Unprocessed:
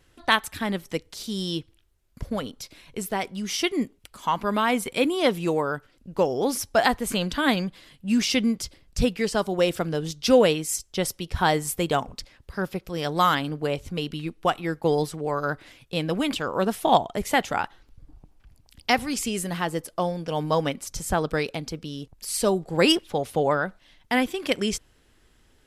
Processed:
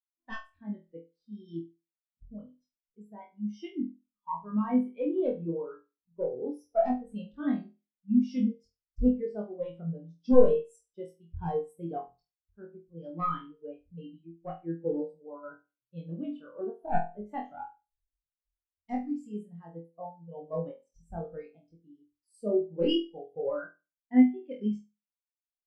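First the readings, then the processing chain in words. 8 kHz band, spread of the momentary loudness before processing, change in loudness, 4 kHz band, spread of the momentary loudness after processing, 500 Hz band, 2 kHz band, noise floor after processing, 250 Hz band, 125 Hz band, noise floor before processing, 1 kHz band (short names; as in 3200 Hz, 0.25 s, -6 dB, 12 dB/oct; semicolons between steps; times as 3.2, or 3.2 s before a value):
under -35 dB, 12 LU, -6.0 dB, under -15 dB, 20 LU, -6.5 dB, -21.5 dB, under -85 dBFS, -3.5 dB, -10.0 dB, -61 dBFS, -12.5 dB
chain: one-sided fold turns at -17 dBFS; flutter echo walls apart 4.1 m, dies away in 0.63 s; spectral expander 2.5:1; gain -2 dB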